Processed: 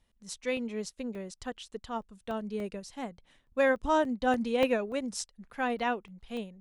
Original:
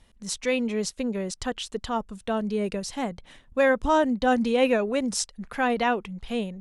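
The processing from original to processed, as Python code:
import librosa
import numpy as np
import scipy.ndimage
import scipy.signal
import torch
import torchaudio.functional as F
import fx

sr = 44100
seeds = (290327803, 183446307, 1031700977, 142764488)

y = fx.buffer_crackle(x, sr, first_s=0.57, period_s=0.29, block=64, kind='zero')
y = fx.upward_expand(y, sr, threshold_db=-36.0, expansion=1.5)
y = y * librosa.db_to_amplitude(-4.0)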